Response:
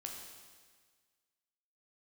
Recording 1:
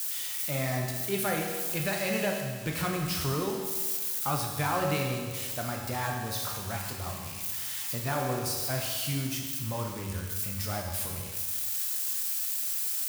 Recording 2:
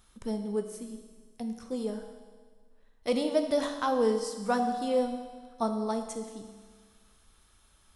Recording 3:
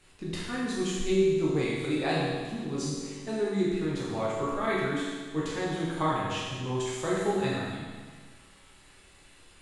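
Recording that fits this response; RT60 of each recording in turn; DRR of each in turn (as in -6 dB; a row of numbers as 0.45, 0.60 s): 1; 1.6, 1.6, 1.6 s; 0.5, 5.0, -7.0 dB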